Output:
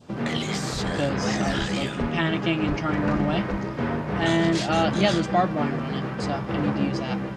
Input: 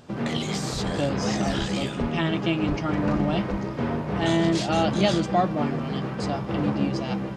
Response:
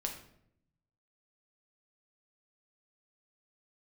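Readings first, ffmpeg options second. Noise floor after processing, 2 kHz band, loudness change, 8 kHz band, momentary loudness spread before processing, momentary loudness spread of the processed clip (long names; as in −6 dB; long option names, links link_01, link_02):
−32 dBFS, +4.0 dB, +0.5 dB, 0.0 dB, 6 LU, 7 LU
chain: -af "adynamicequalizer=threshold=0.00891:dfrequency=1700:dqfactor=1.4:tfrequency=1700:tqfactor=1.4:attack=5:release=100:ratio=0.375:range=2.5:mode=boostabove:tftype=bell"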